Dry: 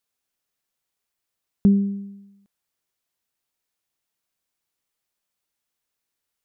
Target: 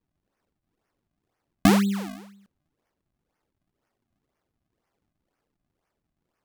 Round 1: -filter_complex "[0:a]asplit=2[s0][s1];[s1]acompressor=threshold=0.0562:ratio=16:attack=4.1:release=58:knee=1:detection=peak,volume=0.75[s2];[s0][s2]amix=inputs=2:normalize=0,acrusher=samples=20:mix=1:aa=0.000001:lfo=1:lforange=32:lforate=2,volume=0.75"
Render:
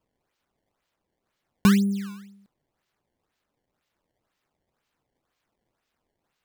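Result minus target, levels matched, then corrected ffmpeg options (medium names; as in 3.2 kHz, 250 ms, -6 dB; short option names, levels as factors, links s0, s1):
decimation with a swept rate: distortion -12 dB
-filter_complex "[0:a]asplit=2[s0][s1];[s1]acompressor=threshold=0.0562:ratio=16:attack=4.1:release=58:knee=1:detection=peak,volume=0.75[s2];[s0][s2]amix=inputs=2:normalize=0,acrusher=samples=55:mix=1:aa=0.000001:lfo=1:lforange=88:lforate=2,volume=0.75"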